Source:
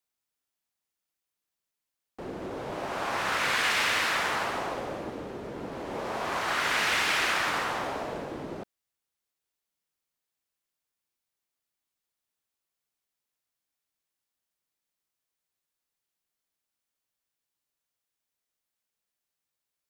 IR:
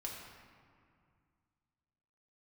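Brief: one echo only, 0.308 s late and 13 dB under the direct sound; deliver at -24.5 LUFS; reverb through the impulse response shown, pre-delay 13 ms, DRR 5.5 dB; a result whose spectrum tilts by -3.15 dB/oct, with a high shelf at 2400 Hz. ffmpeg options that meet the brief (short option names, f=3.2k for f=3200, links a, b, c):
-filter_complex "[0:a]highshelf=f=2.4k:g=-6.5,aecho=1:1:308:0.224,asplit=2[a][b];[1:a]atrim=start_sample=2205,adelay=13[c];[b][c]afir=irnorm=-1:irlink=0,volume=-4.5dB[d];[a][d]amix=inputs=2:normalize=0,volume=5dB"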